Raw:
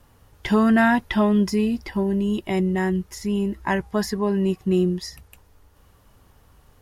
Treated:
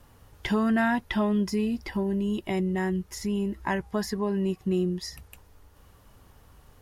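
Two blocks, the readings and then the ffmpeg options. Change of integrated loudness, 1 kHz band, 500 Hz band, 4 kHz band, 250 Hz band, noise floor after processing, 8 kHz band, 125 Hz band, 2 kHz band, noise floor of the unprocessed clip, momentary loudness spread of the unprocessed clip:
-6.0 dB, -6.0 dB, -6.0 dB, -4.0 dB, -6.0 dB, -57 dBFS, -3.5 dB, -5.5 dB, -6.0 dB, -56 dBFS, 8 LU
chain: -af "acompressor=threshold=-33dB:ratio=1.5"

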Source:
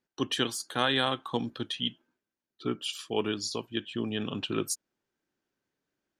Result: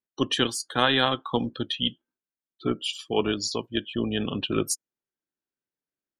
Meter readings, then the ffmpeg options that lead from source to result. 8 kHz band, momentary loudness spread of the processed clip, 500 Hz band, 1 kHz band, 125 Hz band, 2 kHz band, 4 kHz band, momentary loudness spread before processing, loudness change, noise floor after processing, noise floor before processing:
+4.0 dB, 8 LU, +5.0 dB, +5.0 dB, +5.0 dB, +4.5 dB, +4.5 dB, 8 LU, +5.0 dB, under -85 dBFS, under -85 dBFS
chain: -af "tremolo=f=270:d=0.333,afftdn=nr=18:nf=-45,volume=6.5dB"

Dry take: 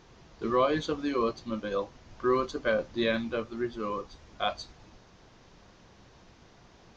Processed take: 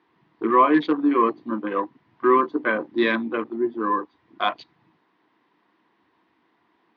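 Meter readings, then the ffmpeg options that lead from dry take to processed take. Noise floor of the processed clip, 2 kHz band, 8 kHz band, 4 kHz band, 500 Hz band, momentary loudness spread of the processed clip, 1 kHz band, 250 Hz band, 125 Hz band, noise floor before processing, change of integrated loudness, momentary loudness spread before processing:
-67 dBFS, +8.5 dB, n/a, +2.0 dB, +5.0 dB, 11 LU, +11.5 dB, +10.0 dB, -2.5 dB, -57 dBFS, +8.5 dB, 11 LU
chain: -af "acontrast=52,afwtdn=0.02,highpass=f=180:w=0.5412,highpass=f=180:w=1.3066,equalizer=f=180:t=q:w=4:g=-5,equalizer=f=310:t=q:w=4:g=9,equalizer=f=560:t=q:w=4:g=-8,equalizer=f=1k:t=q:w=4:g=9,equalizer=f=1.9k:t=q:w=4:g=7,lowpass=f=3.7k:w=0.5412,lowpass=f=3.7k:w=1.3066"

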